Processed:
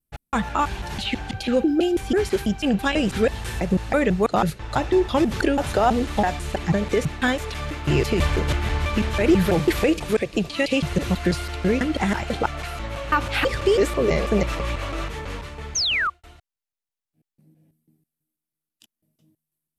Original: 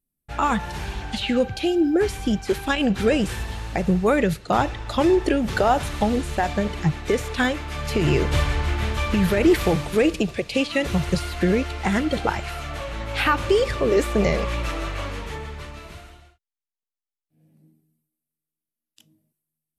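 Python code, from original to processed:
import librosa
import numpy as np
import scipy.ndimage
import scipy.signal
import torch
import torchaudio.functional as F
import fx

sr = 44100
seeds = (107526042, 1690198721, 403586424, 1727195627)

y = fx.block_reorder(x, sr, ms=164.0, group=2)
y = fx.spec_paint(y, sr, seeds[0], shape='fall', start_s=15.75, length_s=0.35, low_hz=1100.0, high_hz=6700.0, level_db=-22.0)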